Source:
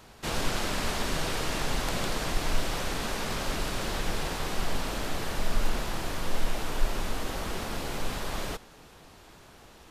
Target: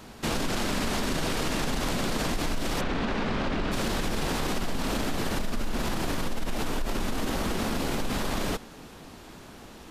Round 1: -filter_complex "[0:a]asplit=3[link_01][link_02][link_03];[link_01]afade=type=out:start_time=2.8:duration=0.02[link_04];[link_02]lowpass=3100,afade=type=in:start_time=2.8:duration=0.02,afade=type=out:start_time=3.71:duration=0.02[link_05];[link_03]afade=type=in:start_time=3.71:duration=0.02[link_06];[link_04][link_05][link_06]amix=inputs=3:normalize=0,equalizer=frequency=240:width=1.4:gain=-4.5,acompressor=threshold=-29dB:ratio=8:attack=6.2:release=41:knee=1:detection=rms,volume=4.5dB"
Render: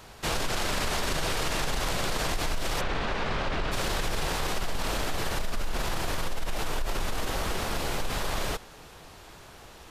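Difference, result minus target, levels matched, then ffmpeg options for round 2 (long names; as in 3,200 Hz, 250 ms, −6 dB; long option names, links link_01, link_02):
250 Hz band −7.0 dB
-filter_complex "[0:a]asplit=3[link_01][link_02][link_03];[link_01]afade=type=out:start_time=2.8:duration=0.02[link_04];[link_02]lowpass=3100,afade=type=in:start_time=2.8:duration=0.02,afade=type=out:start_time=3.71:duration=0.02[link_05];[link_03]afade=type=in:start_time=3.71:duration=0.02[link_06];[link_04][link_05][link_06]amix=inputs=3:normalize=0,equalizer=frequency=240:width=1.4:gain=7.5,acompressor=threshold=-29dB:ratio=8:attack=6.2:release=41:knee=1:detection=rms,volume=4.5dB"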